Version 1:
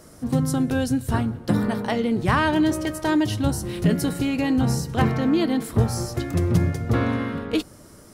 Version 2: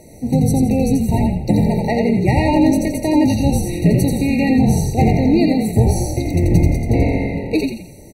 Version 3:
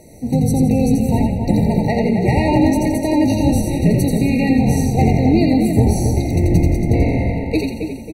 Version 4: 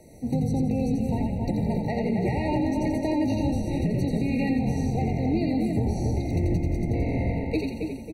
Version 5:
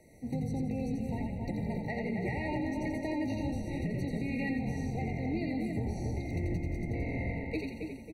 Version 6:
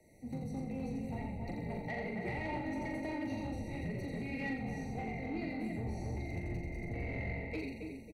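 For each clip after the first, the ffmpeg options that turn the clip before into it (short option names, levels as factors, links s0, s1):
-filter_complex "[0:a]asplit=2[s0][s1];[s1]asplit=5[s2][s3][s4][s5][s6];[s2]adelay=85,afreqshift=-44,volume=0.668[s7];[s3]adelay=170,afreqshift=-88,volume=0.26[s8];[s4]adelay=255,afreqshift=-132,volume=0.101[s9];[s5]adelay=340,afreqshift=-176,volume=0.0398[s10];[s6]adelay=425,afreqshift=-220,volume=0.0155[s11];[s7][s8][s9][s10][s11]amix=inputs=5:normalize=0[s12];[s0][s12]amix=inputs=2:normalize=0,afftfilt=real='re*eq(mod(floor(b*sr/1024/940),2),0)':imag='im*eq(mod(floor(b*sr/1024/940),2),0)':win_size=1024:overlap=0.75,volume=1.88"
-filter_complex "[0:a]asplit=2[s0][s1];[s1]adelay=273,lowpass=f=2300:p=1,volume=0.501,asplit=2[s2][s3];[s3]adelay=273,lowpass=f=2300:p=1,volume=0.43,asplit=2[s4][s5];[s5]adelay=273,lowpass=f=2300:p=1,volume=0.43,asplit=2[s6][s7];[s7]adelay=273,lowpass=f=2300:p=1,volume=0.43,asplit=2[s8][s9];[s9]adelay=273,lowpass=f=2300:p=1,volume=0.43[s10];[s0][s2][s4][s6][s8][s10]amix=inputs=6:normalize=0,volume=0.891"
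-filter_complex "[0:a]highshelf=f=5200:g=-4,acrossover=split=330|860|6200[s0][s1][s2][s3];[s3]acompressor=threshold=0.00398:ratio=6[s4];[s0][s1][s2][s4]amix=inputs=4:normalize=0,alimiter=limit=0.335:level=0:latency=1:release=244,volume=0.473"
-af "equalizer=f=2000:w=3:g=9.5,volume=0.355"
-filter_complex "[0:a]acrossover=split=150|680|2600[s0][s1][s2][s3];[s2]dynaudnorm=f=120:g=9:m=1.78[s4];[s0][s1][s4][s3]amix=inputs=4:normalize=0,asoftclip=type=tanh:threshold=0.0531,asplit=2[s5][s6];[s6]adelay=41,volume=0.562[s7];[s5][s7]amix=inputs=2:normalize=0,volume=0.531"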